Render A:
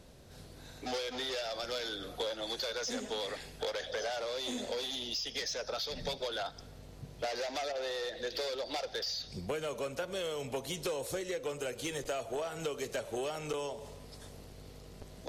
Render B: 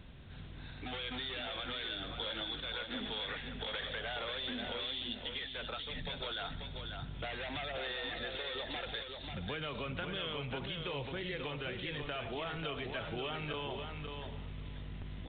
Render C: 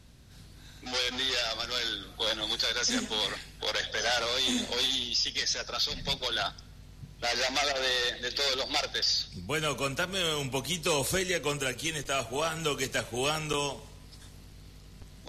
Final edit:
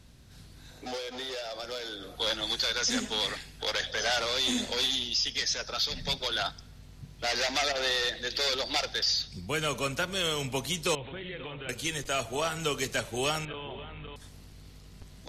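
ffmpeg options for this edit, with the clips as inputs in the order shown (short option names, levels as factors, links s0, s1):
-filter_complex "[1:a]asplit=2[s0][s1];[2:a]asplit=4[s2][s3][s4][s5];[s2]atrim=end=0.712[s6];[0:a]atrim=start=0.708:end=2.172[s7];[s3]atrim=start=2.168:end=10.952[s8];[s0]atrim=start=10.948:end=11.692[s9];[s4]atrim=start=11.688:end=13.452[s10];[s1]atrim=start=13.448:end=14.162[s11];[s5]atrim=start=14.158[s12];[s6][s7]acrossfade=d=0.004:c1=hsin:c2=hsin[s13];[s13][s8]acrossfade=d=0.004:c1=hsin:c2=hsin[s14];[s14][s9]acrossfade=d=0.004:c1=hsin:c2=hsin[s15];[s15][s10]acrossfade=d=0.004:c1=hsin:c2=hsin[s16];[s16][s11]acrossfade=d=0.004:c1=hsin:c2=hsin[s17];[s17][s12]acrossfade=d=0.004:c1=hsin:c2=hsin"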